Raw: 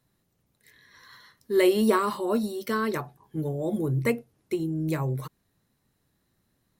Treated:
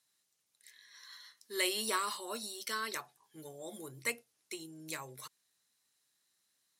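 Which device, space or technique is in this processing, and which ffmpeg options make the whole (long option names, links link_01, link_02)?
piezo pickup straight into a mixer: -af "lowpass=7800,aderivative,volume=7dB"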